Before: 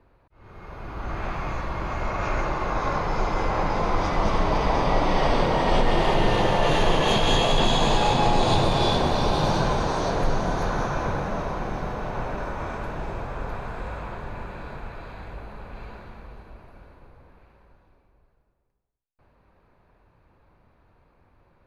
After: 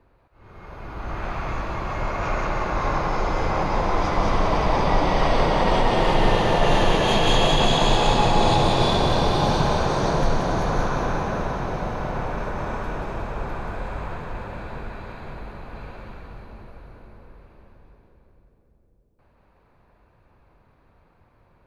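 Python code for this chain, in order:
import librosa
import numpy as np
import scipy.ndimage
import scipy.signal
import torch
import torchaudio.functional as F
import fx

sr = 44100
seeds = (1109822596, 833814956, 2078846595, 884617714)

y = x + fx.echo_split(x, sr, split_hz=510.0, low_ms=540, high_ms=182, feedback_pct=52, wet_db=-4.0, dry=0)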